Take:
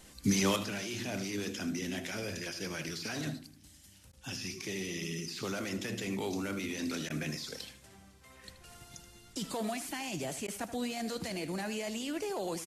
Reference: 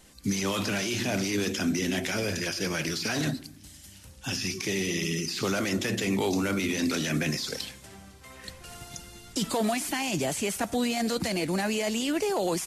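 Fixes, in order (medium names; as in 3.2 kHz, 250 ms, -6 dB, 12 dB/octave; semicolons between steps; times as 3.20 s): interpolate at 4.12/7.09/10.47 s, 10 ms; inverse comb 78 ms -13.5 dB; trim 0 dB, from 0.56 s +9 dB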